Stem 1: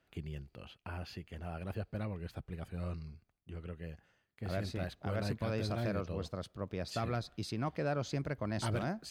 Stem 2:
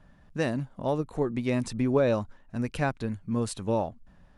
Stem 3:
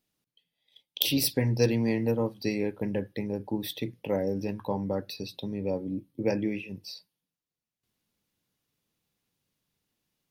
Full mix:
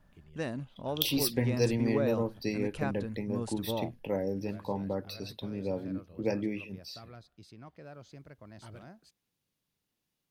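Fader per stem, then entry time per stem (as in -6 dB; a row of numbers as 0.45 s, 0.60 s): -14.0 dB, -7.5 dB, -3.5 dB; 0.00 s, 0.00 s, 0.00 s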